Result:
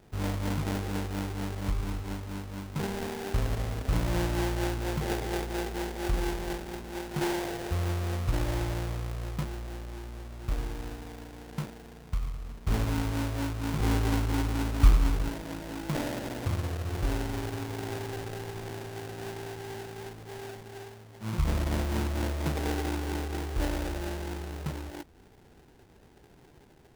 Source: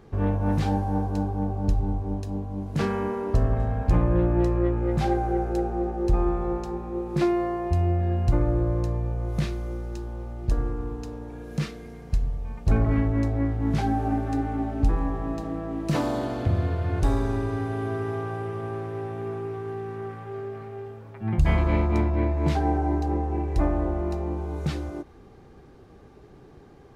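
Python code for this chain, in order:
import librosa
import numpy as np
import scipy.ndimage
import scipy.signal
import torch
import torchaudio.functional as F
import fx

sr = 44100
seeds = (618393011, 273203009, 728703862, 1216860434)

y = fx.low_shelf(x, sr, hz=150.0, db=11.5, at=(13.8, 15.29))
y = fx.sample_hold(y, sr, seeds[0], rate_hz=1200.0, jitter_pct=20)
y = y * 10.0 ** (-7.0 / 20.0)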